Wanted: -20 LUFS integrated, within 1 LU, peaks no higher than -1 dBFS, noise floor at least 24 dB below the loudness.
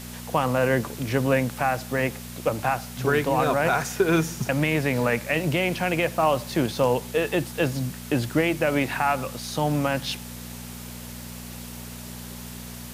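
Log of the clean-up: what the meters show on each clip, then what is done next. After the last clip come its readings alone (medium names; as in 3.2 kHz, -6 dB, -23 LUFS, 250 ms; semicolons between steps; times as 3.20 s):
hum 60 Hz; highest harmonic 240 Hz; hum level -37 dBFS; noise floor -39 dBFS; noise floor target -49 dBFS; loudness -24.5 LUFS; peak level -10.0 dBFS; loudness target -20.0 LUFS
-> de-hum 60 Hz, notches 4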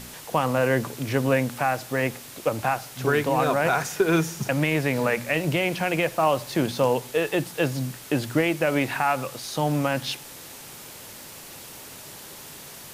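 hum not found; noise floor -42 dBFS; noise floor target -49 dBFS
-> noise reduction 7 dB, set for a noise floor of -42 dBFS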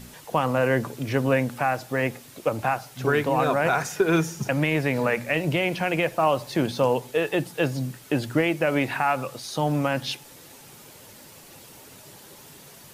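noise floor -48 dBFS; noise floor target -49 dBFS
-> noise reduction 6 dB, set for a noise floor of -48 dBFS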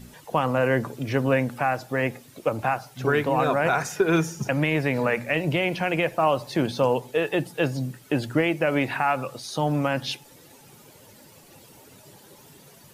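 noise floor -51 dBFS; loudness -24.5 LUFS; peak level -10.5 dBFS; loudness target -20.0 LUFS
-> trim +4.5 dB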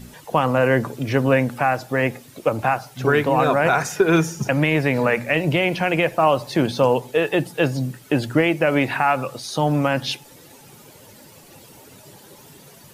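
loudness -20.0 LUFS; peak level -6.0 dBFS; noise floor -47 dBFS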